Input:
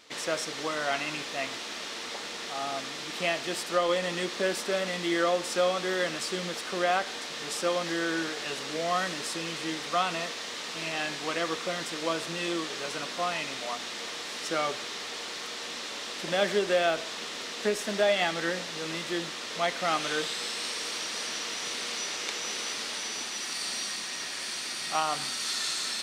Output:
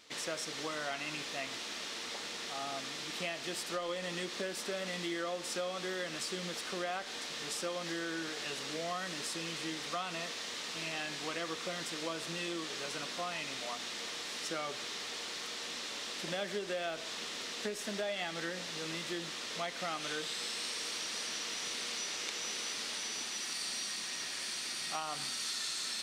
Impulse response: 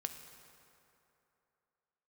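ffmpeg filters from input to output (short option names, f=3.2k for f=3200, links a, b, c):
-af "equalizer=f=750:w=0.39:g=-3.5,acompressor=threshold=-32dB:ratio=4,volume=-2.5dB"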